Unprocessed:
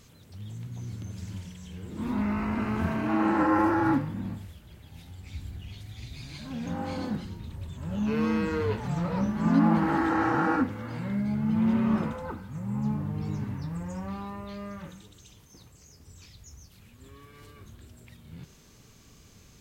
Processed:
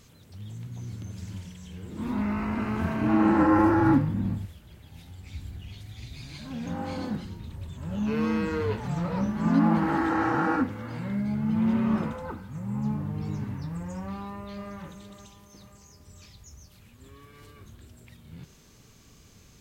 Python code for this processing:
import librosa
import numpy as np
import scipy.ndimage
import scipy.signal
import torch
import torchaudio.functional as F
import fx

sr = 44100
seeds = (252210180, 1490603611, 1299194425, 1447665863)

y = fx.low_shelf(x, sr, hz=290.0, db=8.5, at=(3.01, 4.46))
y = fx.echo_throw(y, sr, start_s=14.04, length_s=0.69, ms=520, feedback_pct=50, wet_db=-11.0)